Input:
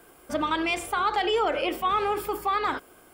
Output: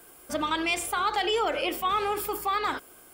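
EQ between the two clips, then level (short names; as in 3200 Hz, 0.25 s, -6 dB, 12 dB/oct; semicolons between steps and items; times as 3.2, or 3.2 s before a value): high shelf 3800 Hz +9.5 dB; -2.5 dB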